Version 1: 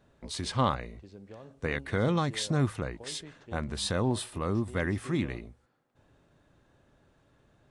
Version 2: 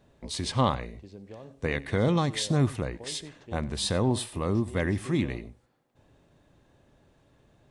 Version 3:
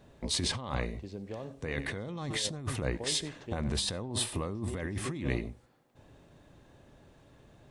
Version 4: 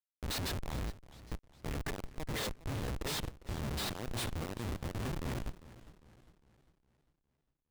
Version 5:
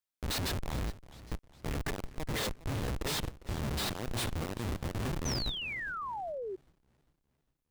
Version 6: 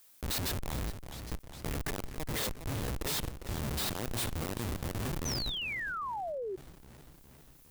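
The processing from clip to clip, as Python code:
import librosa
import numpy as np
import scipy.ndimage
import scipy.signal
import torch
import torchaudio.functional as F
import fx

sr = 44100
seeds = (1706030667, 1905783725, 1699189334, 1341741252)

y1 = fx.peak_eq(x, sr, hz=1400.0, db=-6.0, octaves=0.5)
y1 = y1 + 10.0 ** (-21.0 / 20.0) * np.pad(y1, (int(94 * sr / 1000.0), 0))[:len(y1)]
y1 = y1 * 10.0 ** (3.0 / 20.0)
y2 = fx.over_compress(y1, sr, threshold_db=-33.0, ratio=-1.0)
y2 = y2 * 10.0 ** (-1.0 / 20.0)
y3 = fx.schmitt(y2, sr, flips_db=-32.5)
y3 = fx.echo_warbled(y3, sr, ms=405, feedback_pct=46, rate_hz=2.8, cents=156, wet_db=-17.5)
y4 = fx.spec_paint(y3, sr, seeds[0], shape='fall', start_s=5.25, length_s=1.31, low_hz=360.0, high_hz=6300.0, level_db=-41.0)
y4 = y4 * 10.0 ** (3.0 / 20.0)
y5 = fx.high_shelf(y4, sr, hz=8100.0, db=10.0)
y5 = fx.env_flatten(y5, sr, amount_pct=50)
y5 = y5 * 10.0 ** (-3.0 / 20.0)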